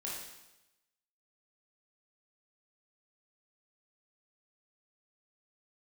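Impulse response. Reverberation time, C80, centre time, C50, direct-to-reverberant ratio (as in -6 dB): 0.95 s, 3.5 dB, 65 ms, 0.5 dB, -5.5 dB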